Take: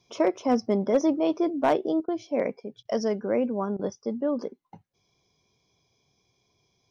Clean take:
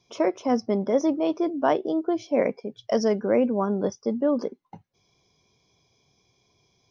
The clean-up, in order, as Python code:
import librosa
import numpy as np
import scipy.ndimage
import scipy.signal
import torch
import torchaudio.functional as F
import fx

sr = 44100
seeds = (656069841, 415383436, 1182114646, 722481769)

y = fx.fix_declip(x, sr, threshold_db=-13.5)
y = fx.fix_interpolate(y, sr, at_s=(2.06, 2.83, 3.77), length_ms=21.0)
y = fx.gain(y, sr, db=fx.steps((0.0, 0.0), (2.0, 4.0)))